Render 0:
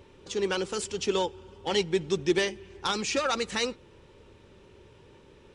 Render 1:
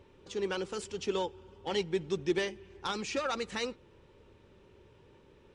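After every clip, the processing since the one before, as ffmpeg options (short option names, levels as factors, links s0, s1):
-af "highshelf=f=4200:g=-6.5,volume=0.562"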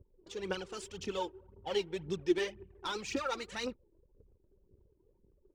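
-af "anlmdn=0.00158,aphaser=in_gain=1:out_gain=1:delay=3.3:decay=0.63:speed=1.9:type=triangular,volume=0.562"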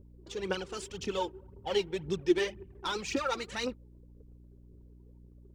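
-af "aeval=exprs='val(0)+0.00141*(sin(2*PI*60*n/s)+sin(2*PI*2*60*n/s)/2+sin(2*PI*3*60*n/s)/3+sin(2*PI*4*60*n/s)/4+sin(2*PI*5*60*n/s)/5)':c=same,volume=1.5"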